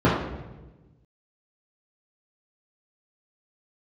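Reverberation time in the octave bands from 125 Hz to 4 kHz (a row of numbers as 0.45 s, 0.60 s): 1.8 s, 1.5 s, 1.3 s, 1.0 s, 0.90 s, 0.80 s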